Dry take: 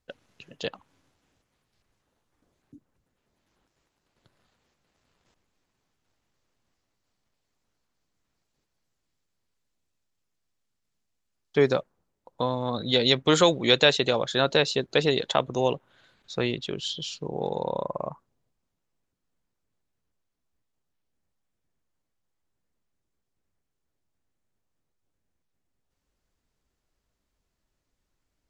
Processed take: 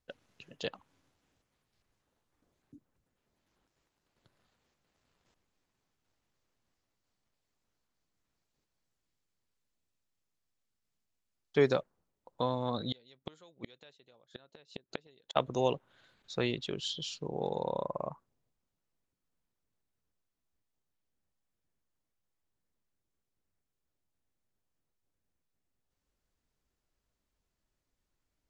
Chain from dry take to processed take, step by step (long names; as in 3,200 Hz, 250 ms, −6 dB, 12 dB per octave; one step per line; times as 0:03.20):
0:12.88–0:15.36: gate with flip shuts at −15 dBFS, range −34 dB
level −5 dB